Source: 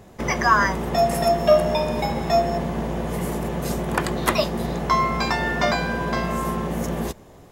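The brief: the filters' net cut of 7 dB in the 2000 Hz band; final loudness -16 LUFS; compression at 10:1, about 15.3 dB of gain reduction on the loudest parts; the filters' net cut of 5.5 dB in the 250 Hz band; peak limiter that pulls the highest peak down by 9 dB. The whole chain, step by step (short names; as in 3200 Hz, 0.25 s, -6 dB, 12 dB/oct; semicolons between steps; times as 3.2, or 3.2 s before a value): bell 250 Hz -8 dB; bell 2000 Hz -9 dB; compressor 10:1, threshold -28 dBFS; gain +18 dB; limiter -6.5 dBFS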